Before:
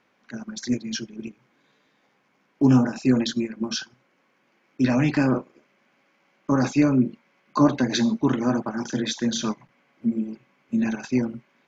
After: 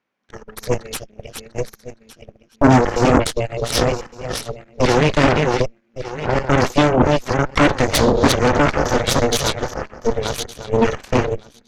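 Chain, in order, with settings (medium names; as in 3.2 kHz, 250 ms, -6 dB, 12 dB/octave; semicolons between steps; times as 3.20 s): backward echo that repeats 581 ms, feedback 47%, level -3 dB; Chebyshev shaper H 5 -43 dB, 7 -15 dB, 8 -9 dB, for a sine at -5.5 dBFS; trim +2.5 dB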